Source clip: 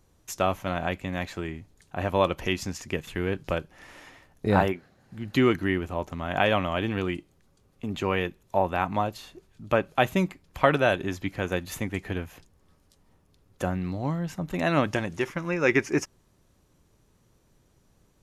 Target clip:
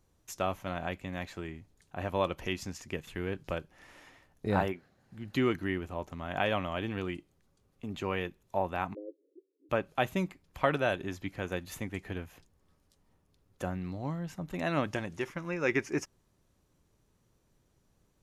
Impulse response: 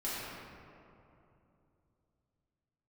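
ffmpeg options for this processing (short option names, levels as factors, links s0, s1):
-filter_complex "[0:a]asplit=3[s0][s1][s2];[s0]afade=t=out:st=8.93:d=0.02[s3];[s1]asuperpass=centerf=390:order=12:qfactor=1.6,afade=t=in:st=8.93:d=0.02,afade=t=out:st=9.69:d=0.02[s4];[s2]afade=t=in:st=9.69:d=0.02[s5];[s3][s4][s5]amix=inputs=3:normalize=0,volume=0.447"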